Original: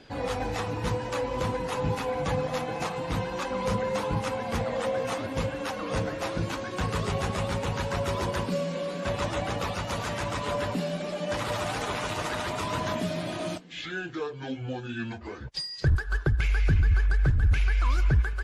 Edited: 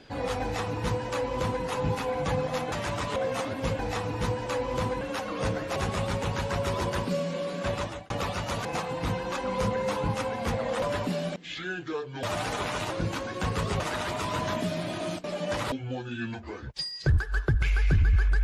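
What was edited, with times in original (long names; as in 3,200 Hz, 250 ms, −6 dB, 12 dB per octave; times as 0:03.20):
0:00.42–0:01.64: duplicate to 0:05.52
0:02.72–0:04.89: swap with 0:10.06–0:10.50
0:06.27–0:07.17: move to 0:12.19
0:09.14–0:09.51: fade out
0:11.04–0:11.52: swap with 0:13.63–0:14.50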